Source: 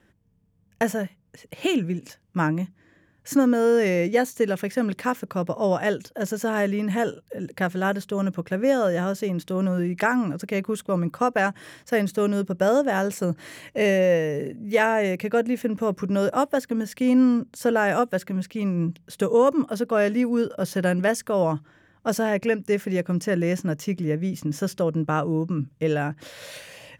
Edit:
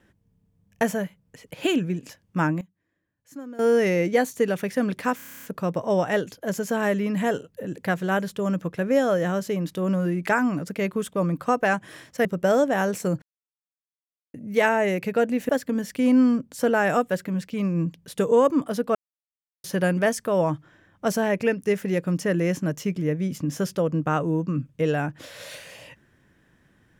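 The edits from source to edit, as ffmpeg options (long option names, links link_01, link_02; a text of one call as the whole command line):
ffmpeg -i in.wav -filter_complex "[0:a]asplit=18[link_01][link_02][link_03][link_04][link_05][link_06][link_07][link_08][link_09][link_10][link_11][link_12][link_13][link_14][link_15][link_16][link_17][link_18];[link_01]atrim=end=2.61,asetpts=PTS-STARTPTS,afade=type=out:start_time=2.44:duration=0.17:curve=log:silence=0.112202[link_19];[link_02]atrim=start=2.61:end=3.59,asetpts=PTS-STARTPTS,volume=-19dB[link_20];[link_03]atrim=start=3.59:end=5.192,asetpts=PTS-STARTPTS,afade=type=in:duration=0.17:curve=log:silence=0.112202[link_21];[link_04]atrim=start=5.158:end=5.192[link_22];[link_05]atrim=start=5.158:end=5.192[link_23];[link_06]atrim=start=5.158:end=5.192[link_24];[link_07]atrim=start=5.158:end=5.192[link_25];[link_08]atrim=start=5.158:end=5.192[link_26];[link_09]atrim=start=5.158:end=5.192[link_27];[link_10]atrim=start=5.158:end=5.192[link_28];[link_11]atrim=start=5.158:end=5.192[link_29];[link_12]atrim=start=5.158:end=11.982[link_30];[link_13]atrim=start=12.418:end=13.39,asetpts=PTS-STARTPTS,afade=type=out:start_time=0.968:duration=0.004:curve=hsin[link_31];[link_14]atrim=start=13.39:end=14.51,asetpts=PTS-STARTPTS,volume=0[link_32];[link_15]atrim=start=14.51:end=15.662,asetpts=PTS-STARTPTS,afade=type=in:duration=0.004:curve=hsin[link_33];[link_16]atrim=start=16.508:end=19.97,asetpts=PTS-STARTPTS,afade=type=out:start_time=3.458:duration=0.004:curve=hsin[link_34];[link_17]atrim=start=19.97:end=20.66,asetpts=PTS-STARTPTS,volume=0[link_35];[link_18]atrim=start=20.66,asetpts=PTS-STARTPTS,afade=type=in:duration=0.004:curve=hsin[link_36];[link_19][link_20][link_21]concat=n=3:v=0:a=1[link_37];[link_37][link_22]acrossfade=duration=0.004:curve1=hsin:curve2=hsin[link_38];[link_38][link_23]acrossfade=duration=0.004:curve1=hsin:curve2=hsin[link_39];[link_39][link_24]acrossfade=duration=0.004:curve1=hsin:curve2=hsin[link_40];[link_40][link_25]acrossfade=duration=0.004:curve1=hsin:curve2=hsin[link_41];[link_41][link_26]acrossfade=duration=0.004:curve1=hsin:curve2=hsin[link_42];[link_42][link_27]acrossfade=duration=0.004:curve1=hsin:curve2=hsin[link_43];[link_43][link_28]acrossfade=duration=0.004:curve1=hsin:curve2=hsin[link_44];[link_44][link_29]acrossfade=duration=0.004:curve1=hsin:curve2=hsin[link_45];[link_45][link_30]acrossfade=duration=0.004:curve1=hsin:curve2=hsin[link_46];[link_31][link_32][link_33]concat=n=3:v=0:a=1[link_47];[link_46][link_47]acrossfade=duration=0.004:curve1=hsin:curve2=hsin[link_48];[link_34][link_35][link_36]concat=n=3:v=0:a=1[link_49];[link_48][link_49]acrossfade=duration=0.004:curve1=hsin:curve2=hsin" out.wav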